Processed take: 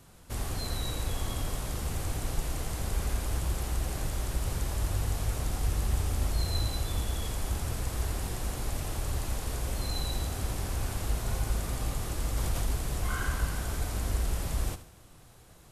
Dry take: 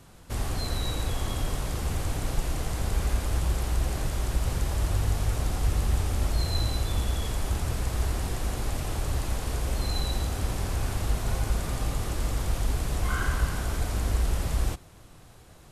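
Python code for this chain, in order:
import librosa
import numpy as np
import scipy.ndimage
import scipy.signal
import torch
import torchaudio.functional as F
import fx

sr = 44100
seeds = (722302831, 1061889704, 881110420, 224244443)

p1 = fx.high_shelf(x, sr, hz=8000.0, db=6.0)
p2 = p1 + fx.echo_feedback(p1, sr, ms=74, feedback_pct=41, wet_db=-13.5, dry=0)
p3 = fx.env_flatten(p2, sr, amount_pct=50, at=(12.35, 12.76))
y = F.gain(torch.from_numpy(p3), -4.0).numpy()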